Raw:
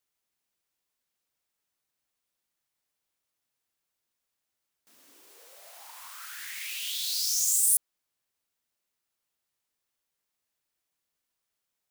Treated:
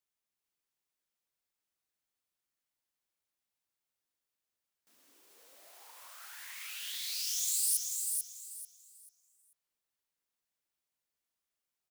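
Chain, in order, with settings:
0:05.30–0:05.79: log-companded quantiser 6 bits
repeating echo 440 ms, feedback 26%, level −4 dB
level −7.5 dB

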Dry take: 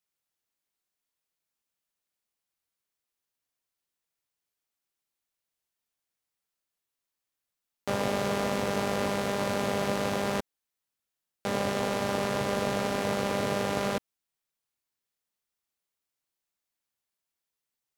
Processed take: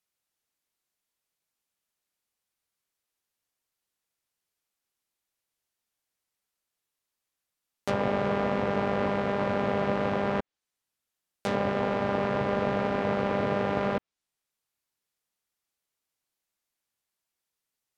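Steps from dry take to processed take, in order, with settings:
treble cut that deepens with the level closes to 2,200 Hz, closed at −25.5 dBFS
level +2 dB

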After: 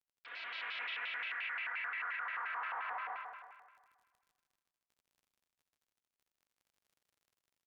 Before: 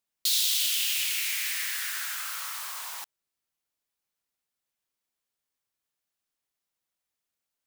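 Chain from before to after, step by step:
mu-law and A-law mismatch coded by A
high-pass filter 570 Hz 12 dB per octave
noise gate with hold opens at −27 dBFS
Butterworth low-pass 2,000 Hz 36 dB per octave
comb filter 3.5 ms, depth 65%
four-comb reverb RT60 0.85 s, combs from 28 ms, DRR −4.5 dB
surface crackle 20 per second −58 dBFS
echo machine with several playback heads 78 ms, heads all three, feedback 48%, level −7 dB
brickwall limiter −31 dBFS, peak gain reduction 9.5 dB
pitch modulation by a square or saw wave square 5.7 Hz, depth 250 cents
level −1 dB

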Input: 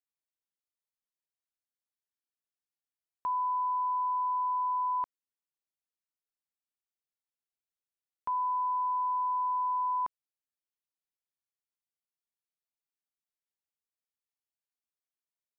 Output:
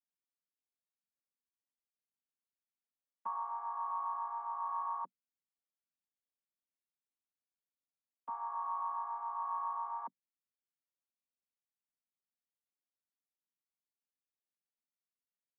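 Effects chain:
channel vocoder with a chord as carrier major triad, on F#3
level −6.5 dB

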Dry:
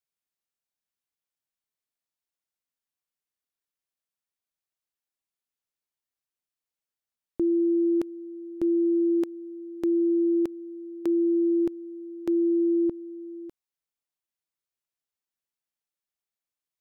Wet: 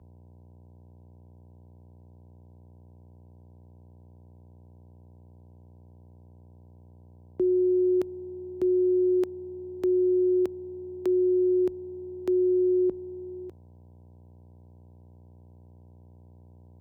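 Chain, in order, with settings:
hum with harmonics 60 Hz, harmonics 16, −52 dBFS −7 dB per octave
frequency shifter +26 Hz

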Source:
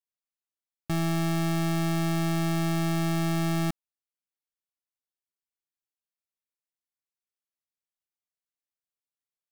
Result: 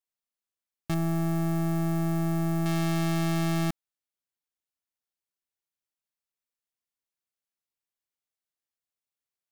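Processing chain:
stylus tracing distortion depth 0.34 ms
0:00.94–0:02.66: parametric band 3,600 Hz −13 dB 2.1 octaves

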